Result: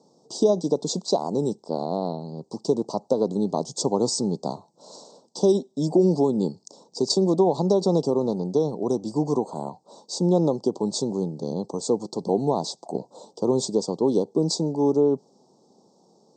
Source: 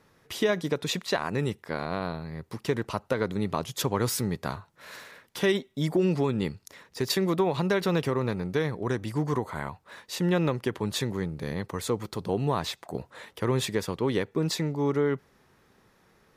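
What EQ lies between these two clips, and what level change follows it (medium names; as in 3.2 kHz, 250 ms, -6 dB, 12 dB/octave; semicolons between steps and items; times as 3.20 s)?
high-pass 180 Hz 24 dB/octave; Chebyshev band-stop 840–4700 Hz, order 3; brick-wall FIR low-pass 8.5 kHz; +7.0 dB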